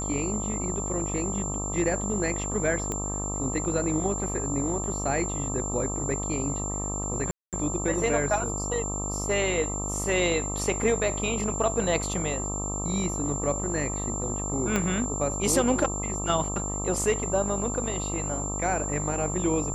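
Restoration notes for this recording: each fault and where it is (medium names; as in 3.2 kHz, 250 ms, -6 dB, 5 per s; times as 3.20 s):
buzz 50 Hz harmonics 26 -33 dBFS
whine 7.3 kHz -32 dBFS
2.92 s: pop -17 dBFS
7.31–7.53 s: dropout 217 ms
14.76 s: pop -11 dBFS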